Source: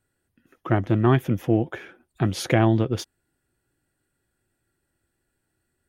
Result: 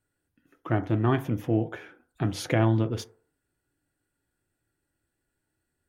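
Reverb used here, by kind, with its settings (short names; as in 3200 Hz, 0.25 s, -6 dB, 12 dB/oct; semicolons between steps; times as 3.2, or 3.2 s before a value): FDN reverb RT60 0.48 s, low-frequency decay 0.75×, high-frequency decay 0.3×, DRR 8.5 dB; gain -5 dB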